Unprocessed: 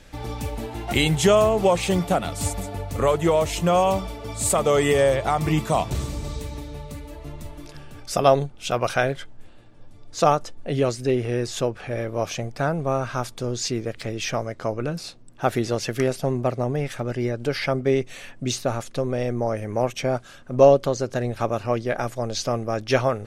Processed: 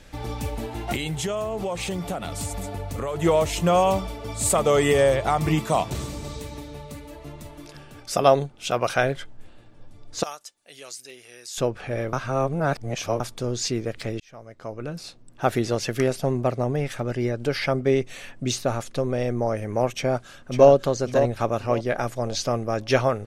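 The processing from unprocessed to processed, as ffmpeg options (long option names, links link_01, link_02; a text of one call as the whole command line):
ffmpeg -i in.wav -filter_complex "[0:a]asettb=1/sr,asplit=3[link_01][link_02][link_03];[link_01]atrim=end=0.954[link_04];[link_02]atrim=start=0.95:end=3.16,asetpts=PTS-STARTPTS,afade=type=in:duration=0.004:curve=qsin,afade=type=out:start_time=2.206:duration=0.004:curve=qsin,acompressor=threshold=-26dB:ratio=4:attack=3.2:release=140:knee=1:detection=peak[link_05];[link_03]atrim=start=3.156[link_06];[link_04][link_05]acrossfade=duration=0.004:curve1=hsin:curve2=qsin[link_07];[link_07][link_06]acrossfade=duration=0.004:curve1=qsin:curve2=hsin,asettb=1/sr,asplit=3[link_08][link_09][link_10];[link_08]atrim=end=5.554[link_11];[link_09]atrim=start=5.55:end=8.98,asetpts=PTS-STARTPTS,afade=type=in:duration=0.004:curve=qsin,afade=type=out:start_time=3.426:duration=0.004:curve=qsin,lowshelf=frequency=74:gain=-11[link_12];[link_10]atrim=start=8.976[link_13];[link_11][link_12]acrossfade=duration=0.004:curve1=hsin:curve2=qsin[link_14];[link_14][link_13]acrossfade=duration=0.004:curve1=qsin:curve2=hsin,asettb=1/sr,asplit=3[link_15][link_16][link_17];[link_15]atrim=end=10.234[link_18];[link_16]atrim=start=10.23:end=11.58,asetpts=PTS-STARTPTS,afade=type=in:duration=0.004:curve=qsin,afade=type=out:start_time=1.346:duration=0.004:curve=qsin,aderivative[link_19];[link_17]atrim=start=11.576[link_20];[link_18][link_19]acrossfade=duration=0.004:curve1=hsin:curve2=qsin[link_21];[link_21][link_20]acrossfade=duration=0.004:curve1=qsin:curve2=hsin,asplit=2[link_22][link_23];[link_23]afade=type=in:start_time=19.96:duration=0.01,afade=type=out:start_time=20.7:duration=0.01,aecho=0:1:550|1100|1650|2200:0.398107|0.119432|0.0358296|0.0107489[link_24];[link_22][link_24]amix=inputs=2:normalize=0,asplit=4[link_25][link_26][link_27][link_28];[link_25]atrim=end=12.132[link_29];[link_26]atrim=start=12.128:end=13.202,asetpts=PTS-STARTPTS,areverse[link_30];[link_27]atrim=start=13.198:end=14.2,asetpts=PTS-STARTPTS,afade=type=out:start_time=0.998:duration=0.004:curve=hsin[link_31];[link_28]atrim=start=14.2,asetpts=PTS-STARTPTS,afade=type=in:duration=1.25[link_32];[link_29][link_30]acrossfade=duration=0.004:curve1=hsin:curve2=hsin[link_33];[link_31][link_32]concat=n=2:v=0:a=1[link_34];[link_33][link_34]acrossfade=duration=0.004:curve1=hsin:curve2=hsin" out.wav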